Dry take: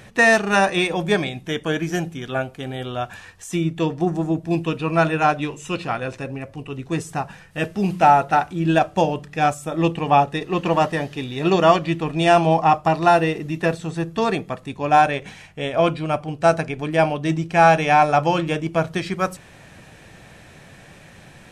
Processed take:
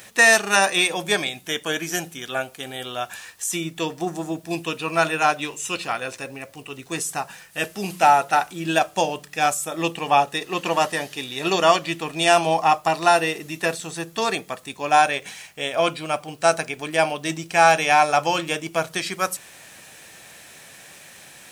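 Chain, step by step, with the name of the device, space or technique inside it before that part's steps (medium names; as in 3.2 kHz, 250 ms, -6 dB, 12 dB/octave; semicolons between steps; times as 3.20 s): turntable without a phono preamp (RIAA curve recording; white noise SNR 37 dB); trim -1 dB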